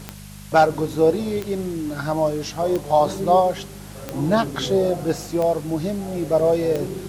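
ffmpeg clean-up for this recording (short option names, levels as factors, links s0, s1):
-af "adeclick=t=4,bandreject=f=50.3:t=h:w=4,bandreject=f=100.6:t=h:w=4,bandreject=f=150.9:t=h:w=4,bandreject=f=201.2:t=h:w=4,afwtdn=0.0063"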